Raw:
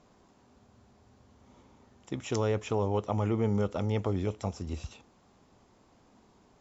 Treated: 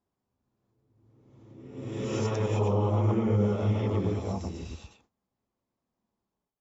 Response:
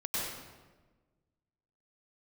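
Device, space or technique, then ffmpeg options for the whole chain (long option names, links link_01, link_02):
reverse reverb: -filter_complex "[0:a]agate=range=-25dB:threshold=-56dB:ratio=16:detection=peak,areverse[link_01];[1:a]atrim=start_sample=2205[link_02];[link_01][link_02]afir=irnorm=-1:irlink=0,areverse,volume=-4.5dB"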